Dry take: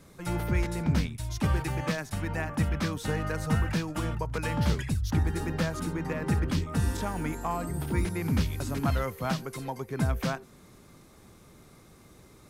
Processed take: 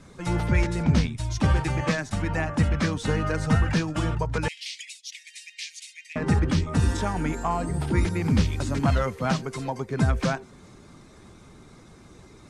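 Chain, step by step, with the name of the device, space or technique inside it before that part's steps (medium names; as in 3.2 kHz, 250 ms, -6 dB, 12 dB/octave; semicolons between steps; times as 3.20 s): clip after many re-uploads (low-pass 8.6 kHz 24 dB/octave; coarse spectral quantiser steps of 15 dB); 4.48–6.16 s: steep high-pass 2.1 kHz 72 dB/octave; trim +5.5 dB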